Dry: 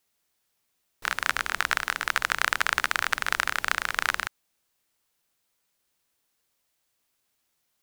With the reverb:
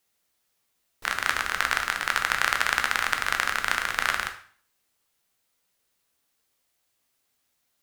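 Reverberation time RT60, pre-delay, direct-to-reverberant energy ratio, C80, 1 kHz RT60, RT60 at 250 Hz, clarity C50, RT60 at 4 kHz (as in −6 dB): 0.50 s, 5 ms, 4.5 dB, 14.5 dB, 0.50 s, 0.55 s, 10.0 dB, 0.45 s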